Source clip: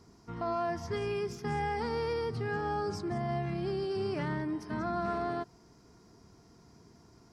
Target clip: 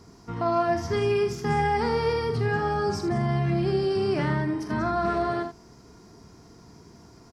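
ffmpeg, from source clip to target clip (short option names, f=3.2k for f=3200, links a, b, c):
-af "aecho=1:1:44|79:0.355|0.299,volume=7.5dB"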